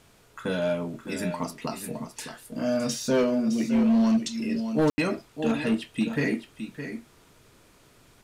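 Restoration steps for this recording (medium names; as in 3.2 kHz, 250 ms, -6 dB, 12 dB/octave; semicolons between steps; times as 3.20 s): clip repair -17.5 dBFS; room tone fill 4.90–4.98 s; expander -49 dBFS, range -21 dB; inverse comb 613 ms -10 dB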